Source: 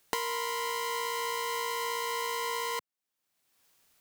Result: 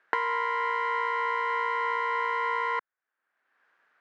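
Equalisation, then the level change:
high-pass filter 350 Hz 12 dB per octave
low-pass with resonance 1,600 Hz, resonance Q 4.4
+2.0 dB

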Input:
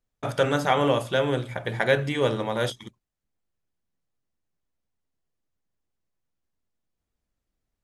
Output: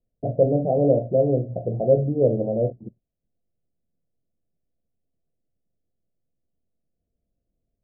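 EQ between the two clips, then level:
Chebyshev low-pass with heavy ripple 710 Hz, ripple 3 dB
+6.0 dB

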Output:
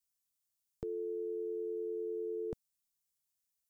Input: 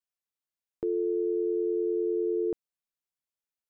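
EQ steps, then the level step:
bass and treble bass +9 dB, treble +14 dB
parametric band 340 Hz −11 dB 0.68 octaves
−4.5 dB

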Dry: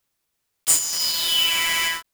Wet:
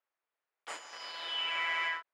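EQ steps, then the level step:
flat-topped band-pass 1,000 Hz, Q 0.62
−6.0 dB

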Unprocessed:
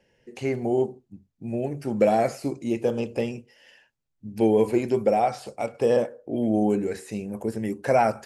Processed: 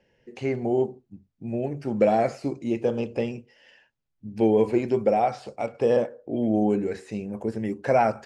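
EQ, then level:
high-frequency loss of the air 83 metres
0.0 dB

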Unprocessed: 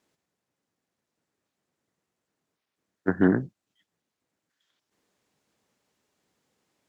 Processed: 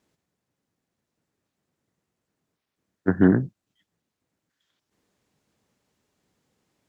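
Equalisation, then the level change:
low-shelf EQ 200 Hz +9.5 dB
0.0 dB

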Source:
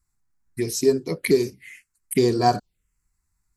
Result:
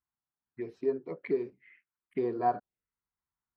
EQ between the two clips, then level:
resonant band-pass 890 Hz, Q 0.68
high-frequency loss of the air 470 metres
−6.0 dB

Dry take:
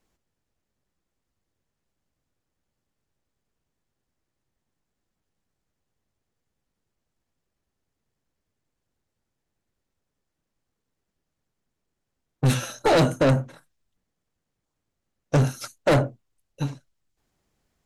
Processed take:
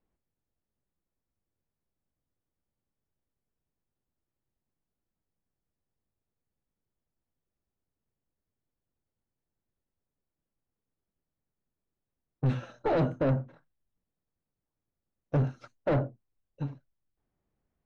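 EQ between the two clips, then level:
head-to-tape spacing loss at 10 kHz 38 dB
−6.0 dB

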